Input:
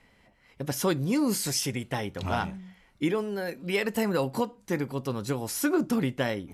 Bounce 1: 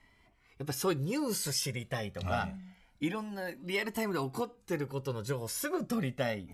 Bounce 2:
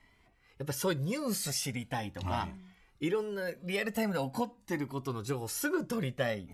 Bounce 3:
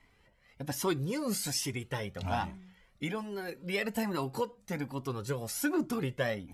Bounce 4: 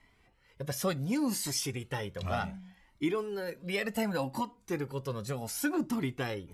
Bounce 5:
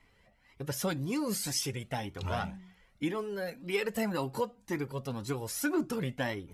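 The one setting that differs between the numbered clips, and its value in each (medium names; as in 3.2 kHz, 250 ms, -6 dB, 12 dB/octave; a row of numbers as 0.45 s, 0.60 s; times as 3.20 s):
Shepard-style flanger, rate: 0.26 Hz, 0.41 Hz, 1.2 Hz, 0.67 Hz, 1.9 Hz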